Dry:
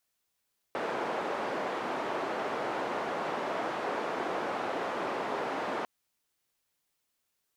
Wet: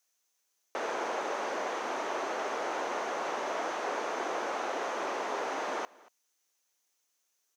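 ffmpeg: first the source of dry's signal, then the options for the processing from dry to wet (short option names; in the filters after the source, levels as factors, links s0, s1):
-f lavfi -i "anoisesrc=c=white:d=5.1:r=44100:seed=1,highpass=f=330,lowpass=f=890,volume=-13.3dB"
-af "highpass=330,equalizer=f=6200:t=o:w=0.31:g=12,aecho=1:1:233:0.0668"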